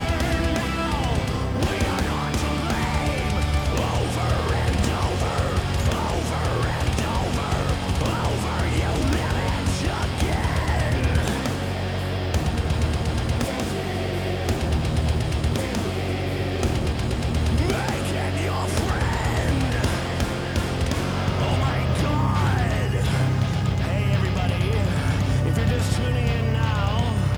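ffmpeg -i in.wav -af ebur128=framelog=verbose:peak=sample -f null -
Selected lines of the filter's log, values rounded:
Integrated loudness:
  I:         -23.6 LUFS
  Threshold: -33.6 LUFS
Loudness range:
  LRA:         2.1 LU
  Threshold: -43.7 LUFS
  LRA low:   -24.7 LUFS
  LRA high:  -22.5 LUFS
Sample peak:
  Peak:       -8.3 dBFS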